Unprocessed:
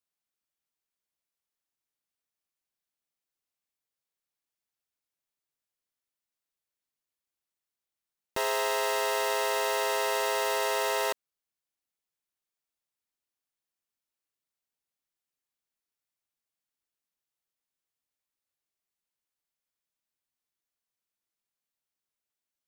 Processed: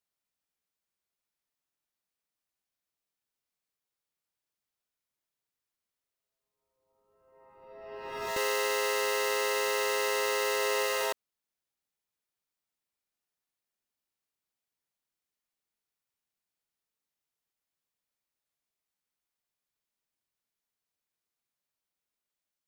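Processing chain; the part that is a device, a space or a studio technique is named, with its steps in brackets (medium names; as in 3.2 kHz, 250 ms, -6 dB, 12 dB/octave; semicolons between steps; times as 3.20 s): reverse reverb (reverse; reverberation RT60 1.8 s, pre-delay 54 ms, DRR 0.5 dB; reverse); trim -2 dB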